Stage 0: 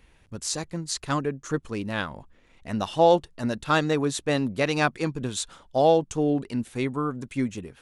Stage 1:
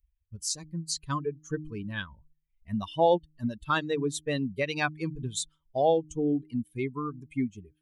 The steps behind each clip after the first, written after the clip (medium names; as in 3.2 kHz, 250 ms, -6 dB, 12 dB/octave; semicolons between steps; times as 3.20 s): expander on every frequency bin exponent 2; de-hum 153.5 Hz, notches 2; in parallel at +2 dB: compression, threshold -33 dBFS, peak gain reduction 16.5 dB; on the sum: trim -4 dB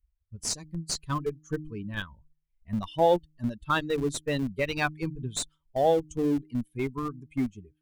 in parallel at -10.5 dB: Schmitt trigger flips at -27.5 dBFS; on the sum: tape noise reduction on one side only decoder only